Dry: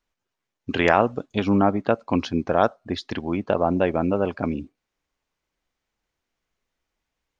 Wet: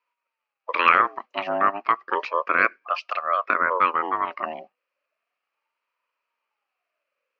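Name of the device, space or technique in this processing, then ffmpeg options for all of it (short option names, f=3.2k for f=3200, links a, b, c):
voice changer toy: -af "aeval=exprs='val(0)*sin(2*PI*720*n/s+720*0.35/0.33*sin(2*PI*0.33*n/s))':c=same,highpass=540,equalizer=f=550:t=q:w=4:g=5,equalizer=f=800:t=q:w=4:g=-8,equalizer=f=1.2k:t=q:w=4:g=8,equalizer=f=2.5k:t=q:w=4:g=10,equalizer=f=3.6k:t=q:w=4:g=-10,lowpass=f=4.5k:w=0.5412,lowpass=f=4.5k:w=1.3066,volume=1.5dB"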